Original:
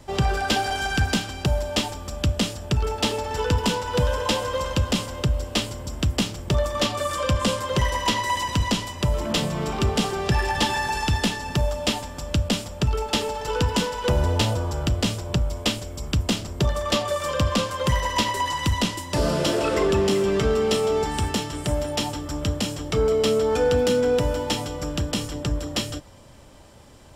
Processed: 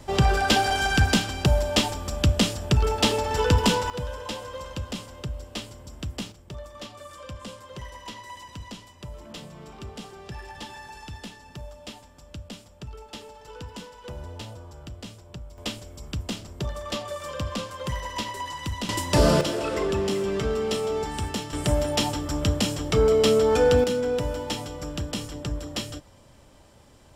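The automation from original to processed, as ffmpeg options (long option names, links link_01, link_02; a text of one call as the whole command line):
ffmpeg -i in.wav -af "asetnsamples=nb_out_samples=441:pad=0,asendcmd='3.9 volume volume -10.5dB;6.32 volume volume -17dB;15.58 volume volume -8.5dB;18.89 volume volume 4dB;19.41 volume volume -5dB;21.53 volume volume 1.5dB;23.84 volume volume -5dB',volume=2dB" out.wav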